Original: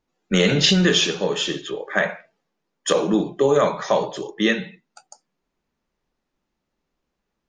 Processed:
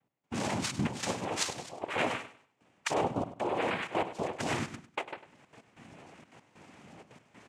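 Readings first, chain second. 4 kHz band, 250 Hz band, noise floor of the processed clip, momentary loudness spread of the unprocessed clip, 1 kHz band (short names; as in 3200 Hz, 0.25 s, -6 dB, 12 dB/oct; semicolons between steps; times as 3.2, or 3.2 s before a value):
-17.5 dB, -14.0 dB, -76 dBFS, 11 LU, -5.5 dB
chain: recorder AGC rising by 36 dB/s; steep low-pass 3400 Hz 96 dB/oct; reverse; compressor 6:1, threshold -26 dBFS, peak gain reduction 15.5 dB; reverse; phaser 1 Hz, delay 1.9 ms, feedback 39%; noise vocoder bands 4; step gate "x..xxxxxx." 190 bpm -12 dB; on a send: feedback echo 0.1 s, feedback 26%, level -14 dB; on the sum: gain -3.5 dB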